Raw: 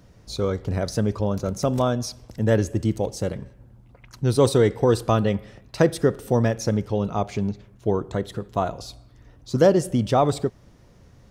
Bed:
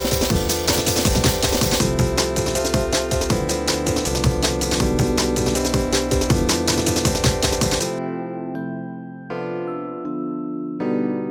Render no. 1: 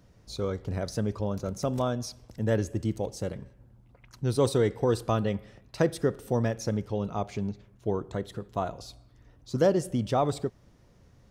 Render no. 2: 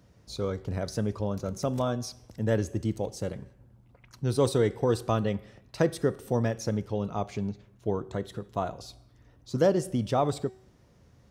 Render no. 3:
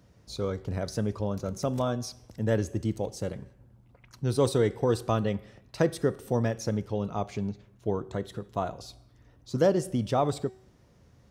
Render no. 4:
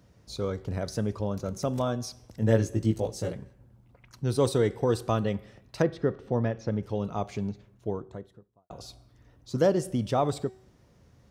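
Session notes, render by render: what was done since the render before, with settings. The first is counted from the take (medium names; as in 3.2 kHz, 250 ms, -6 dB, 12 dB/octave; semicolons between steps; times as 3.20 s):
trim -6.5 dB
high-pass 49 Hz; de-hum 378.4 Hz, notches 35
no audible change
2.40–3.33 s: doubling 18 ms -2.5 dB; 5.82–6.83 s: distance through air 220 m; 7.51–8.70 s: studio fade out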